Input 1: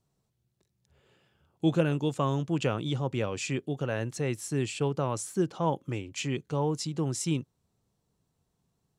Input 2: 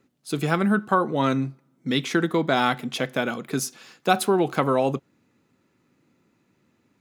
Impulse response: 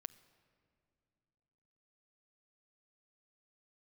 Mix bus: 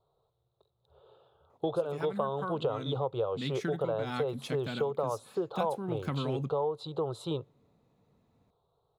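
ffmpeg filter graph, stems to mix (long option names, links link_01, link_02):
-filter_complex "[0:a]firequalizer=gain_entry='entry(110,0);entry(230,-15);entry(440,12);entry(1300,8);entry(1900,-23);entry(3800,8);entry(5500,-24);entry(11000,-11)':delay=0.05:min_phase=1,volume=-1.5dB,asplit=2[link_01][link_02];[link_02]volume=-17.5dB[link_03];[1:a]asubboost=boost=7:cutoff=180,adelay=1500,volume=-12.5dB[link_04];[2:a]atrim=start_sample=2205[link_05];[link_03][link_05]afir=irnorm=-1:irlink=0[link_06];[link_01][link_04][link_06]amix=inputs=3:normalize=0,acompressor=threshold=-28dB:ratio=6"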